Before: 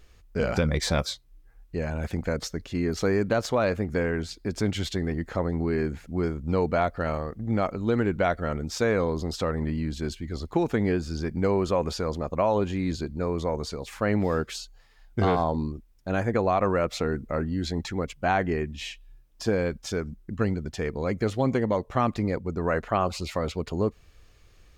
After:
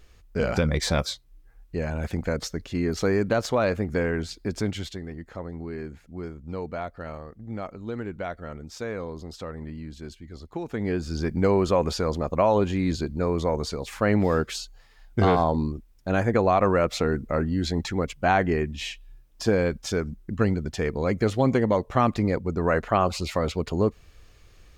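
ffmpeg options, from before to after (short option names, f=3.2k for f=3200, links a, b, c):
-af "volume=12.5dB,afade=t=out:st=4.48:d=0.53:silence=0.334965,afade=t=in:st=10.66:d=0.59:silence=0.266073"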